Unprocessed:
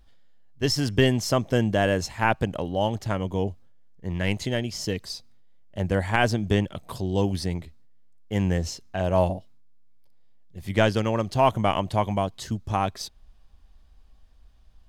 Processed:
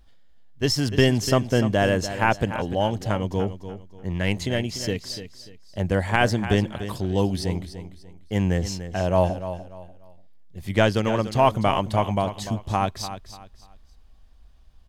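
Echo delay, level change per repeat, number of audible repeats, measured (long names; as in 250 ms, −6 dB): 294 ms, −10.5 dB, 3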